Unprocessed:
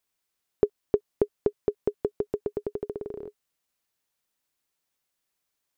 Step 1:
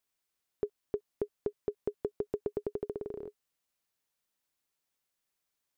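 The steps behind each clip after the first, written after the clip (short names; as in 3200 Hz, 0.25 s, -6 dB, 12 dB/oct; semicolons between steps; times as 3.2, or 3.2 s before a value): limiter -17 dBFS, peak gain reduction 9 dB; gain -3.5 dB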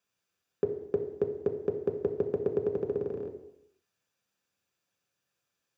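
reverb RT60 0.85 s, pre-delay 3 ms, DRR 3.5 dB; gain -3 dB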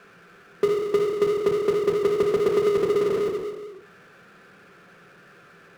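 speaker cabinet 160–2100 Hz, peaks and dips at 170 Hz +9 dB, 270 Hz -4 dB, 400 Hz +7 dB, 580 Hz -3 dB, 910 Hz -9 dB, 1400 Hz +6 dB; power-law curve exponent 0.5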